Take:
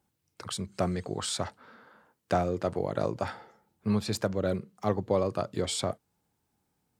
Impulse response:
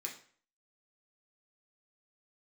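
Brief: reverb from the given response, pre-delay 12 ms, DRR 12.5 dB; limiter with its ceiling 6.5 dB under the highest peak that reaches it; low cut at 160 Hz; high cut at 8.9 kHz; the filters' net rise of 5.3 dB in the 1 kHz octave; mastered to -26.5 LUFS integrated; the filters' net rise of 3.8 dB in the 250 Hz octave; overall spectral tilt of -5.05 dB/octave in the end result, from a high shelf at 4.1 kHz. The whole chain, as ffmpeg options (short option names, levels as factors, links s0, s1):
-filter_complex "[0:a]highpass=160,lowpass=8900,equalizer=f=250:t=o:g=6.5,equalizer=f=1000:t=o:g=7.5,highshelf=f=4100:g=-3,alimiter=limit=0.158:level=0:latency=1,asplit=2[s0][s1];[1:a]atrim=start_sample=2205,adelay=12[s2];[s1][s2]afir=irnorm=-1:irlink=0,volume=0.266[s3];[s0][s3]amix=inputs=2:normalize=0,volume=1.58"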